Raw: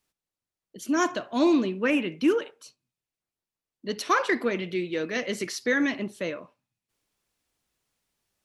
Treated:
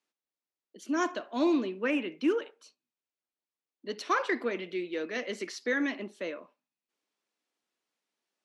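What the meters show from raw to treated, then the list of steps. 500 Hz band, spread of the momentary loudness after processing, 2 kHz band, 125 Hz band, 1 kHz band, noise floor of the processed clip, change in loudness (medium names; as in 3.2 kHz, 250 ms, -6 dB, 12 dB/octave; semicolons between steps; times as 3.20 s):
-4.5 dB, 12 LU, -5.0 dB, under -10 dB, -5.0 dB, under -85 dBFS, -5.0 dB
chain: high-pass 230 Hz 24 dB/octave; distance through air 59 m; trim -4.5 dB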